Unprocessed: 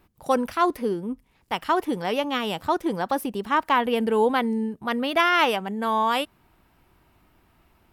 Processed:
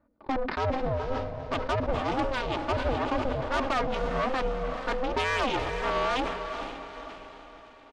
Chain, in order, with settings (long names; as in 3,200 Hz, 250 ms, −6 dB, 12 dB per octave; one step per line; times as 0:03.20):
adaptive Wiener filter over 15 samples
parametric band 91 Hz −12 dB 1.3 octaves
comb filter 3.3 ms, depth 91%
leveller curve on the samples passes 1
downsampling to 11,025 Hz
tube saturation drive 21 dB, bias 0.75
high-frequency loss of the air 84 metres
feedback delay with all-pass diffusion 474 ms, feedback 47%, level −8 dB
ring modulation 260 Hz
level that may fall only so fast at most 48 dB per second